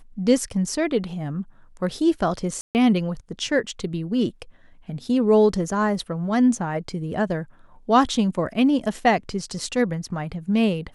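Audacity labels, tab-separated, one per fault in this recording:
2.610000	2.750000	dropout 139 ms

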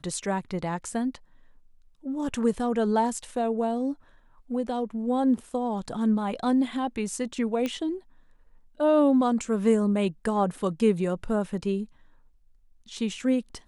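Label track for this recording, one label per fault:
7.660000	7.660000	pop -16 dBFS

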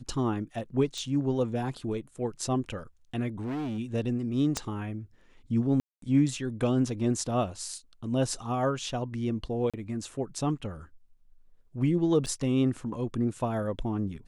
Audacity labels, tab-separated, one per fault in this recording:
0.980000	0.980000	pop
3.390000	3.790000	clipped -30.5 dBFS
4.570000	4.570000	pop -14 dBFS
5.800000	6.020000	dropout 223 ms
9.700000	9.740000	dropout 36 ms
12.260000	12.270000	dropout 7 ms

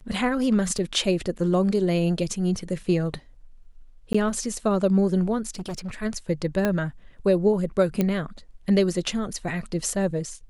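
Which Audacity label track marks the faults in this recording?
0.780000	0.790000	dropout 6 ms
4.130000	4.140000	dropout 15 ms
5.550000	5.910000	clipped -28 dBFS
6.650000	6.650000	pop -10 dBFS
8.010000	8.010000	pop -10 dBFS

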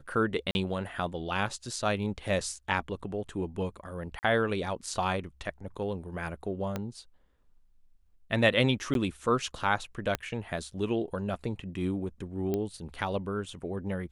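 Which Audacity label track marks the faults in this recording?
0.510000	0.550000	dropout 41 ms
4.190000	4.230000	dropout 39 ms
6.760000	6.760000	pop -18 dBFS
8.940000	8.950000	dropout 12 ms
10.150000	10.150000	pop -14 dBFS
12.540000	12.540000	pop -18 dBFS

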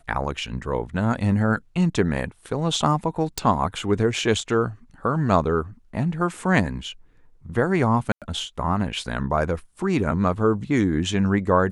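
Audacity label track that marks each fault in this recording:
3.380000	3.380000	pop
8.120000	8.220000	dropout 97 ms

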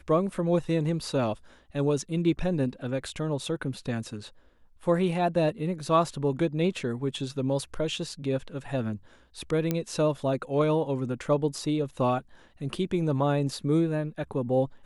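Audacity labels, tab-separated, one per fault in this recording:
9.710000	9.710000	pop -13 dBFS

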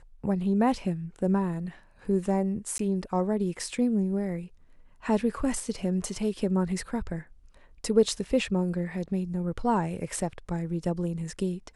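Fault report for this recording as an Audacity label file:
2.780000	2.790000	dropout 13 ms

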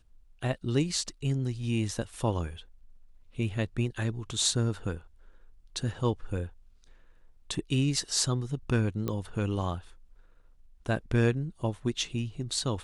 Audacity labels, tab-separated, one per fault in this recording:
9.080000	9.080000	pop -19 dBFS

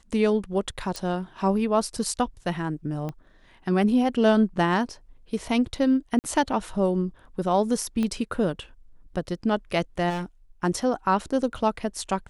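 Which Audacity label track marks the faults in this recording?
0.960000	0.960000	pop
3.090000	3.090000	pop -21 dBFS
6.190000	6.240000	dropout 49 ms
8.030000	8.030000	pop -16 dBFS
10.090000	10.240000	clipped -26.5 dBFS

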